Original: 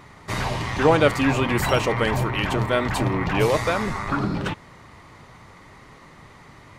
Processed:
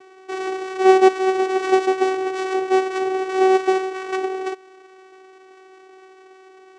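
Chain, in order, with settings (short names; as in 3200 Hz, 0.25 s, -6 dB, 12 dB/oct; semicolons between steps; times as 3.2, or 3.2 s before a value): half-waves squared off; vocoder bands 4, saw 378 Hz; gain -1 dB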